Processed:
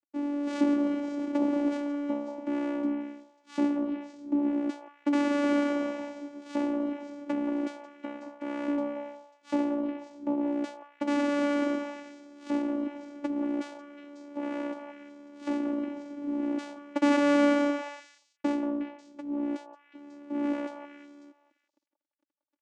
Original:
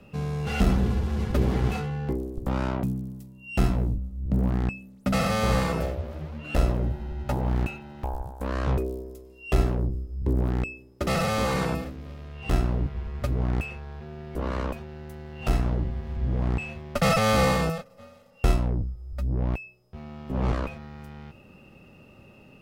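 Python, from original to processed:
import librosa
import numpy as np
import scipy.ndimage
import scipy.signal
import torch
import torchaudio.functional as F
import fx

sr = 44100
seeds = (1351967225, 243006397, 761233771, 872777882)

y = np.sign(x) * np.maximum(np.abs(x) - 10.0 ** (-43.0 / 20.0), 0.0)
y = fx.vocoder(y, sr, bands=4, carrier='saw', carrier_hz=288.0)
y = fx.echo_stepped(y, sr, ms=181, hz=840.0, octaves=1.4, feedback_pct=70, wet_db=-3.5)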